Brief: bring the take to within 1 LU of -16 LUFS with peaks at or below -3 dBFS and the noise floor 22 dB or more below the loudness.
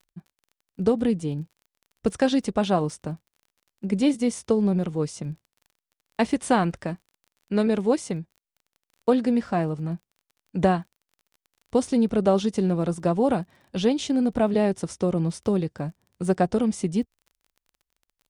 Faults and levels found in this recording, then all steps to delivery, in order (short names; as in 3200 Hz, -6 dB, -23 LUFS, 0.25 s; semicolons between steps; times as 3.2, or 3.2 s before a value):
ticks 28/s; loudness -25.0 LUFS; peak -8.0 dBFS; loudness target -16.0 LUFS
-> de-click; gain +9 dB; limiter -3 dBFS